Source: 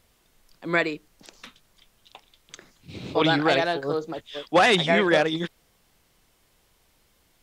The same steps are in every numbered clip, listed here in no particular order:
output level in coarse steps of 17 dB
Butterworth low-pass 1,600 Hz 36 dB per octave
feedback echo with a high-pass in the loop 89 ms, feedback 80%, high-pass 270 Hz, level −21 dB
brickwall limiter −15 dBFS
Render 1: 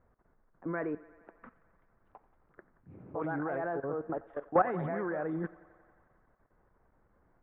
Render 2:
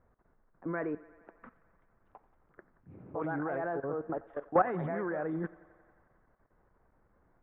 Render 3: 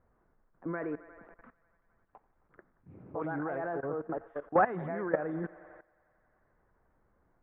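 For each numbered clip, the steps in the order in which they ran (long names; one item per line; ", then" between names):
Butterworth low-pass, then output level in coarse steps, then feedback echo with a high-pass in the loop, then brickwall limiter
Butterworth low-pass, then output level in coarse steps, then brickwall limiter, then feedback echo with a high-pass in the loop
feedback echo with a high-pass in the loop, then output level in coarse steps, then Butterworth low-pass, then brickwall limiter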